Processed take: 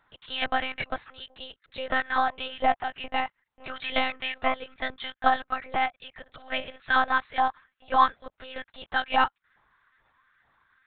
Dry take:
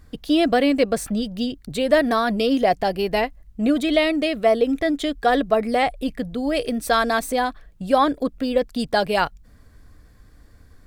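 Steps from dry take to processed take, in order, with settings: LFO high-pass saw up 2.3 Hz 770–1700 Hz; 6.21–6.78 s: flutter echo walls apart 9.9 m, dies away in 0.27 s; monotone LPC vocoder at 8 kHz 260 Hz; trim -5.5 dB

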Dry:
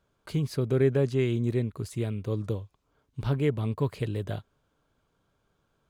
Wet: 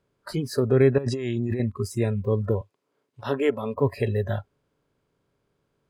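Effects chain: spectral levelling over time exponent 0.6; spectral noise reduction 26 dB; 0.98–1.60 s: compressor with a negative ratio -32 dBFS, ratio -1; 2.61–3.76 s: high-pass 270 Hz 12 dB/octave; trim +4.5 dB

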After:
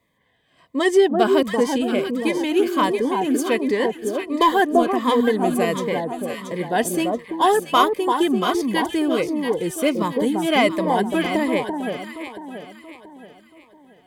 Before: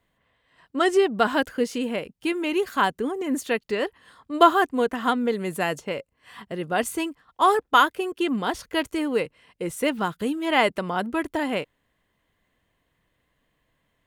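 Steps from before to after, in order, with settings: comb of notches 1.4 kHz; Chebyshev shaper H 5 -26 dB, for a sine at -5 dBFS; on a send: echo whose repeats swap between lows and highs 340 ms, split 1.1 kHz, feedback 62%, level -3 dB; on the sum: Shepard-style phaser falling 1.4 Hz; trim +4 dB

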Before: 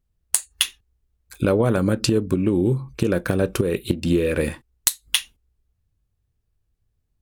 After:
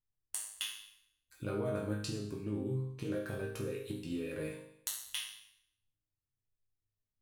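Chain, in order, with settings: chord resonator G#2 major, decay 0.71 s; trim +1 dB

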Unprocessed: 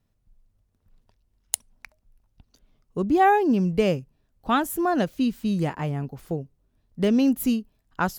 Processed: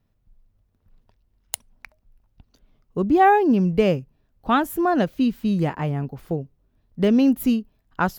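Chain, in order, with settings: peaking EQ 8.4 kHz -8 dB 1.6 oct; trim +3 dB

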